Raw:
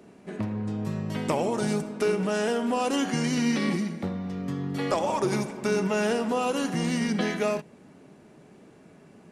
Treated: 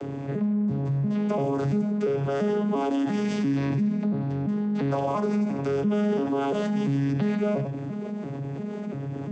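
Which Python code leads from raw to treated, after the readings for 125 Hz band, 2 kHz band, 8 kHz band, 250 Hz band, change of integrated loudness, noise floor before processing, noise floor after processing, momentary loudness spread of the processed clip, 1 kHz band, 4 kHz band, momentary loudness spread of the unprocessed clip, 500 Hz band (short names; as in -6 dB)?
+5.5 dB, -6.5 dB, under -10 dB, +3.5 dB, +1.0 dB, -53 dBFS, -33 dBFS, 8 LU, -2.0 dB, -8.5 dB, 7 LU, +0.5 dB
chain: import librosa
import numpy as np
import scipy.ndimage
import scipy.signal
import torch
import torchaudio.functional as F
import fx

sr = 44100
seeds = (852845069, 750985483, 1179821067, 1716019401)

y = fx.vocoder_arp(x, sr, chord='bare fifth', root=49, every_ms=343)
y = y + 10.0 ** (-16.0 / 20.0) * np.pad(y, (int(95 * sr / 1000.0), 0))[:len(y)]
y = fx.env_flatten(y, sr, amount_pct=70)
y = y * 10.0 ** (-2.5 / 20.0)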